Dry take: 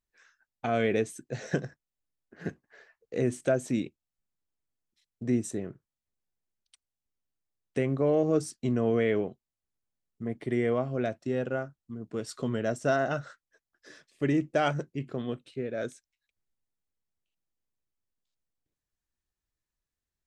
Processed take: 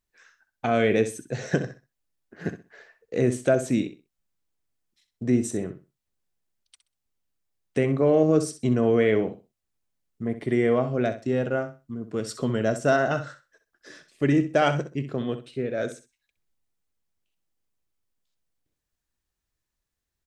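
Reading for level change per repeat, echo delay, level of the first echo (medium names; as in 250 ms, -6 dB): -13.0 dB, 64 ms, -11.5 dB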